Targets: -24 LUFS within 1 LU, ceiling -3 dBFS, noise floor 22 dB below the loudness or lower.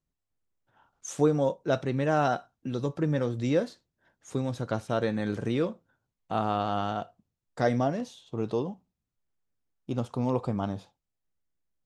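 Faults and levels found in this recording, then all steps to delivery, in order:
loudness -29.5 LUFS; peak level -11.0 dBFS; loudness target -24.0 LUFS
-> trim +5.5 dB

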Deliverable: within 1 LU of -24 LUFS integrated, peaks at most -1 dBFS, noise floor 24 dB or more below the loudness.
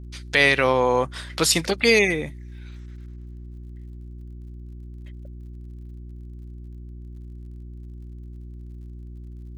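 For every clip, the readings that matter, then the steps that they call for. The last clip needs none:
tick rate 50 per s; hum 60 Hz; highest harmonic 360 Hz; hum level -36 dBFS; loudness -20.0 LUFS; peak level -4.0 dBFS; loudness target -24.0 LUFS
-> de-click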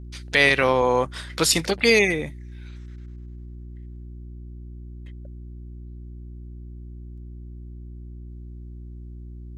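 tick rate 0.21 per s; hum 60 Hz; highest harmonic 360 Hz; hum level -36 dBFS
-> de-hum 60 Hz, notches 6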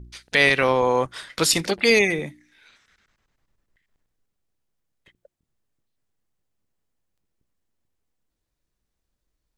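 hum not found; loudness -20.0 LUFS; peak level -4.0 dBFS; loudness target -24.0 LUFS
-> trim -4 dB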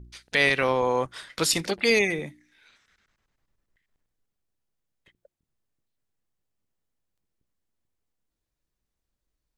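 loudness -24.0 LUFS; peak level -8.0 dBFS; noise floor -84 dBFS

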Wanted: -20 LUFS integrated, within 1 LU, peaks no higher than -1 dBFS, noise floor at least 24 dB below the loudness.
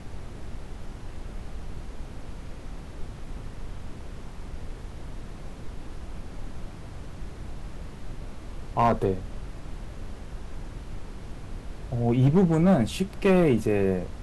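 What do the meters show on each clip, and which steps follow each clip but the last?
clipped samples 0.5%; clipping level -14.0 dBFS; noise floor -42 dBFS; noise floor target -48 dBFS; loudness -23.5 LUFS; peak level -14.0 dBFS; loudness target -20.0 LUFS
-> clip repair -14 dBFS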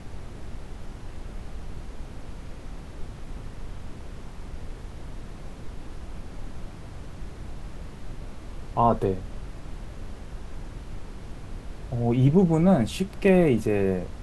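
clipped samples 0.0%; noise floor -42 dBFS; noise floor target -47 dBFS
-> noise print and reduce 6 dB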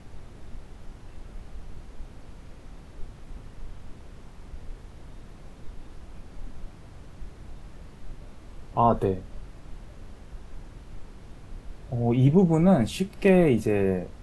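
noise floor -47 dBFS; loudness -23.0 LUFS; peak level -6.5 dBFS; loudness target -20.0 LUFS
-> trim +3 dB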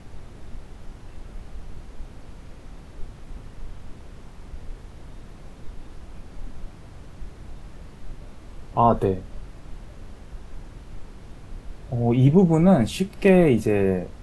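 loudness -20.0 LUFS; peak level -3.5 dBFS; noise floor -44 dBFS

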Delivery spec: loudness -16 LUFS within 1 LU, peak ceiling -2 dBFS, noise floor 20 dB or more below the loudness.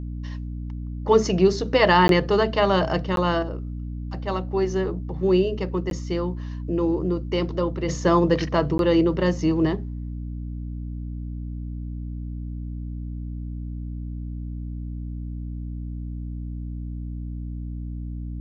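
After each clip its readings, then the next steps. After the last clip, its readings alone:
dropouts 4; longest dropout 12 ms; hum 60 Hz; highest harmonic 300 Hz; hum level -29 dBFS; loudness -25.0 LUFS; peak level -4.5 dBFS; loudness target -16.0 LUFS
-> interpolate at 2.08/3.16/5.90/8.78 s, 12 ms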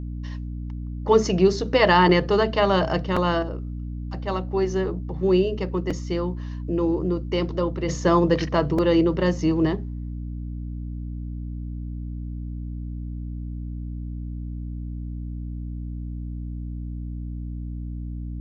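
dropouts 0; hum 60 Hz; highest harmonic 300 Hz; hum level -29 dBFS
-> hum notches 60/120/180/240/300 Hz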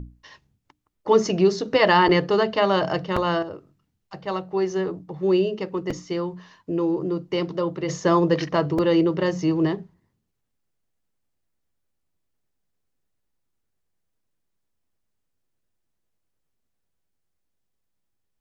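hum not found; loudness -22.5 LUFS; peak level -5.0 dBFS; loudness target -16.0 LUFS
-> trim +6.5 dB; peak limiter -2 dBFS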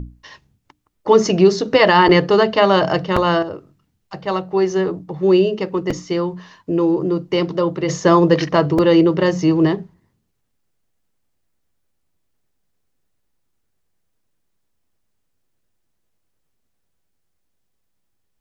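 loudness -16.5 LUFS; peak level -2.0 dBFS; noise floor -69 dBFS

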